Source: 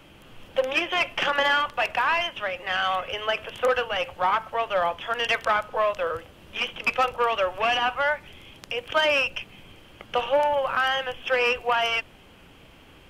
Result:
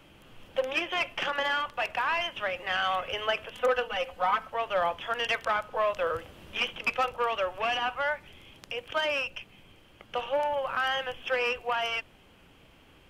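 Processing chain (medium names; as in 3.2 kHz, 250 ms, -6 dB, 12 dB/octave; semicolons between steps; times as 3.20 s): 3.54–4.47 s: comb 4 ms, depth 86%; gain riding within 5 dB 0.5 s; trim -5 dB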